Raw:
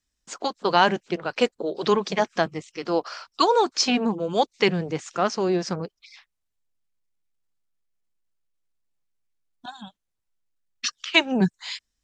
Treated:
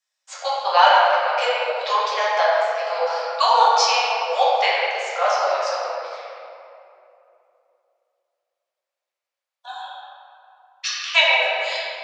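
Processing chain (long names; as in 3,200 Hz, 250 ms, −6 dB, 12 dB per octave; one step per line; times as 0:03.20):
Butterworth high-pass 530 Hz 72 dB per octave
convolution reverb RT60 2.9 s, pre-delay 5 ms, DRR −9 dB
level −2 dB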